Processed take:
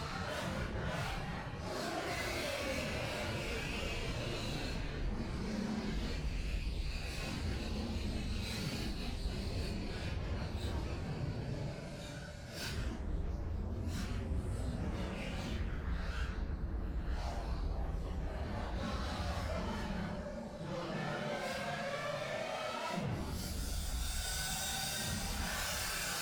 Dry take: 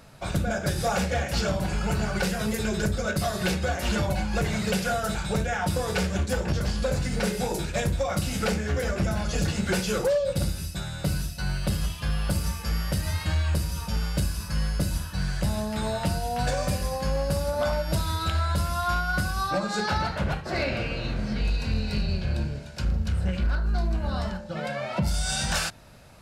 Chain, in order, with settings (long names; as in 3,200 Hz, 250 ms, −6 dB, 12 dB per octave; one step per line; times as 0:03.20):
tube saturation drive 38 dB, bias 0.7
extreme stretch with random phases 4.7×, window 0.05 s, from 0:20.10
level +1 dB